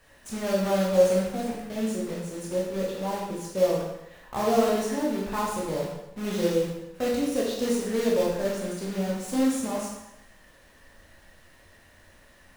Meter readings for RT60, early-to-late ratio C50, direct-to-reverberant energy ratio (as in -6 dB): 0.85 s, 1.0 dB, -4.5 dB